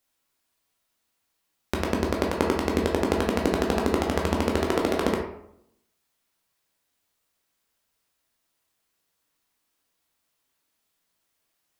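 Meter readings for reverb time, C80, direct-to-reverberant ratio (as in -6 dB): 0.75 s, 8.0 dB, -1.0 dB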